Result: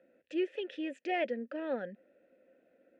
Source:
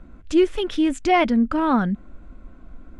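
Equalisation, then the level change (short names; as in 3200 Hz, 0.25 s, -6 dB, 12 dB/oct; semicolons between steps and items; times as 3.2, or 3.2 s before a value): vowel filter e; HPF 180 Hz 12 dB/oct; 0.0 dB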